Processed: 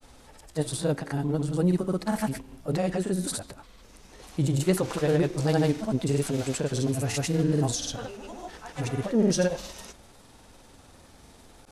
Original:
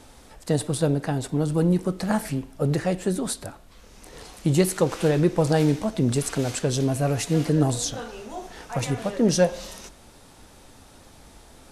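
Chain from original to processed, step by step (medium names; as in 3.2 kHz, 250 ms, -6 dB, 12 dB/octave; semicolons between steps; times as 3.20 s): transient shaper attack -3 dB, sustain +1 dB; granulator, pitch spread up and down by 0 st; trim -1.5 dB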